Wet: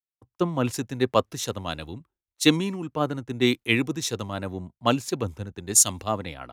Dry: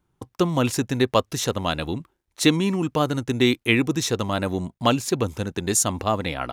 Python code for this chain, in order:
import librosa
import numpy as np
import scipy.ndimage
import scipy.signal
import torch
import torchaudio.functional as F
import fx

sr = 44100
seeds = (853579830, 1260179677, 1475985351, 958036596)

y = fx.band_widen(x, sr, depth_pct=100)
y = y * 10.0 ** (-4.5 / 20.0)